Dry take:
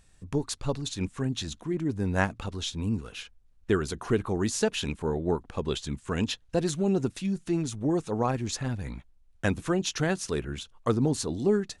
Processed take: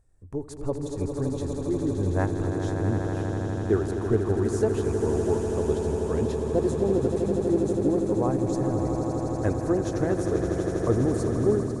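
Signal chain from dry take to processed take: EQ curve 120 Hz 0 dB, 170 Hz -10 dB, 350 Hz 0 dB, 590 Hz -2 dB, 2000 Hz -13 dB, 2900 Hz -23 dB, 8600 Hz -10 dB; on a send: swelling echo 81 ms, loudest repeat 8, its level -9.5 dB; on the sum: AGC gain up to 6 dB; gain -3 dB

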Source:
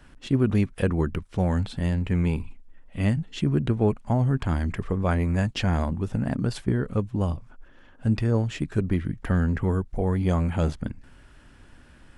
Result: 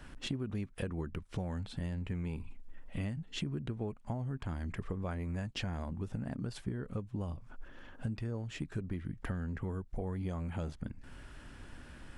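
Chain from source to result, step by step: compressor 8:1, threshold -36 dBFS, peak gain reduction 19 dB; gain +1 dB

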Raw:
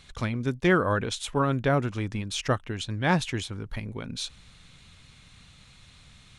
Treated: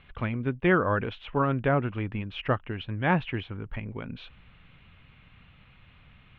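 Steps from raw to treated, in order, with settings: Chebyshev low-pass 2900 Hz, order 4

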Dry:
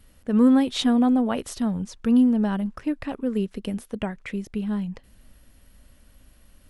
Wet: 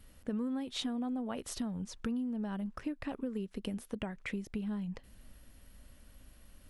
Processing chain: compressor 8:1, threshold -31 dBFS, peak gain reduction 17.5 dB; gain -3 dB

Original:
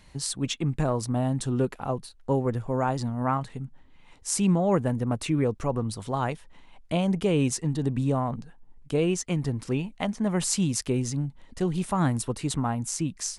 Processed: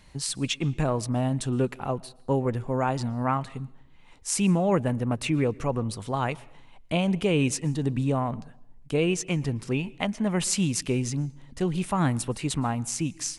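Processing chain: dynamic EQ 2500 Hz, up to +6 dB, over -52 dBFS, Q 1.9; on a send: reverb RT60 0.70 s, pre-delay 0.112 s, DRR 23 dB

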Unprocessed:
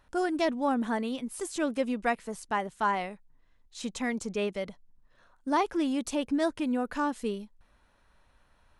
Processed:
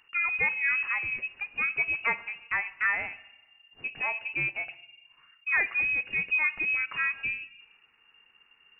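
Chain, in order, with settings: two-slope reverb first 0.94 s, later 3.1 s, from -27 dB, DRR 13.5 dB; inverted band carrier 2800 Hz

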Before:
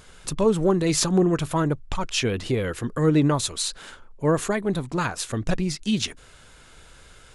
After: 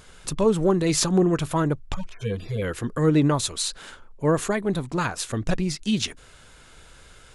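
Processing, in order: 1.94–2.62 median-filter separation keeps harmonic

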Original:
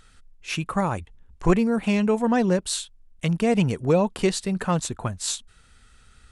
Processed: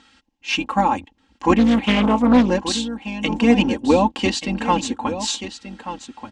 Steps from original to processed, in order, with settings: octaver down 2 oct, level 0 dB; speaker cabinet 150–6700 Hz, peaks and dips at 160 Hz -8 dB, 270 Hz +5 dB, 550 Hz -6 dB, 900 Hz +10 dB, 1300 Hz -6 dB, 2900 Hz +6 dB; comb 3.7 ms, depth 90%; echo 1.182 s -11.5 dB; 1.58–2.5 Doppler distortion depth 0.39 ms; gain +2.5 dB

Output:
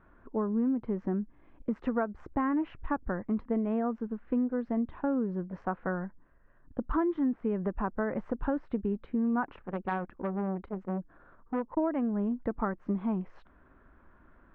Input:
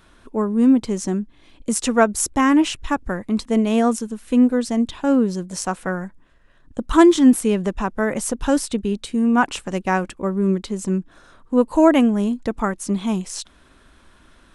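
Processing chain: LPF 1700 Hz 24 dB/oct; compressor 10:1, threshold -19 dBFS, peak gain reduction 12 dB; 9.52–11.77 core saturation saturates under 660 Hz; gain -6.5 dB

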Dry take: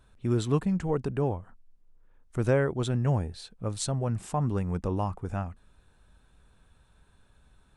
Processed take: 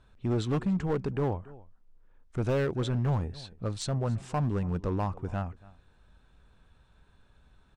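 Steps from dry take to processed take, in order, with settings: LPF 5700 Hz 12 dB/oct; on a send: echo 0.282 s -22 dB; on the sum: hard clip -23 dBFS, distortion -12 dB

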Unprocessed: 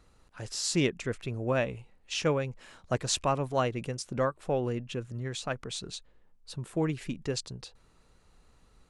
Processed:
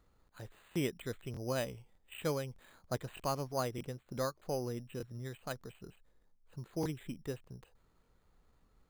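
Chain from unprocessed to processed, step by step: careless resampling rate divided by 8×, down filtered, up hold; crackling interface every 0.61 s, samples 1024, repeat, from 0.71; gain -7.5 dB

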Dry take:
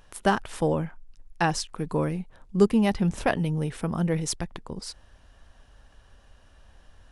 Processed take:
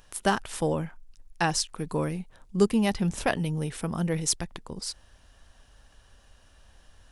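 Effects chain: high shelf 3300 Hz +8.5 dB; gain -2.5 dB

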